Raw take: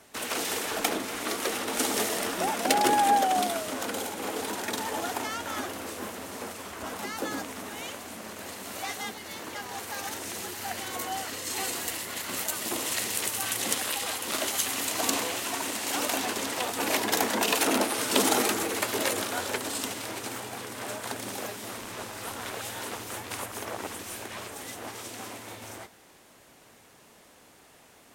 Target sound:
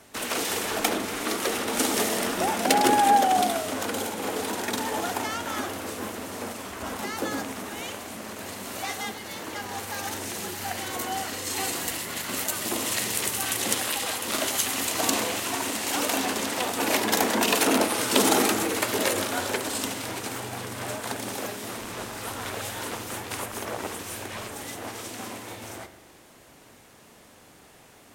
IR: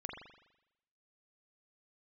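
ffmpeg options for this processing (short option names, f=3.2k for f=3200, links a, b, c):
-filter_complex "[0:a]asplit=2[a][b];[1:a]atrim=start_sample=2205,lowshelf=f=320:g=9.5[c];[b][c]afir=irnorm=-1:irlink=0,volume=-6dB[d];[a][d]amix=inputs=2:normalize=0"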